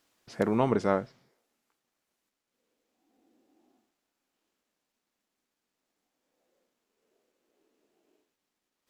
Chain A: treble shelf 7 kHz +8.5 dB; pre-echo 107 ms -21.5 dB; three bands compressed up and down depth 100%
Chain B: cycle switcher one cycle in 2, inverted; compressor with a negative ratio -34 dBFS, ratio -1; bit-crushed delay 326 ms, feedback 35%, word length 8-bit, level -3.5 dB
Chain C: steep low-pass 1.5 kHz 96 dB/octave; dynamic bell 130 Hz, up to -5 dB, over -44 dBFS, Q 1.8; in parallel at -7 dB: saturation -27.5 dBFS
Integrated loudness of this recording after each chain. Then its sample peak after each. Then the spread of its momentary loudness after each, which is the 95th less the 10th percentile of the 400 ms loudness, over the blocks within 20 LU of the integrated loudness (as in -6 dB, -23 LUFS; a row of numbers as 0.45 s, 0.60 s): -33.5 LUFS, -36.5 LUFS, -27.0 LUFS; -9.0 dBFS, -16.0 dBFS, -11.0 dBFS; 24 LU, 17 LU, 8 LU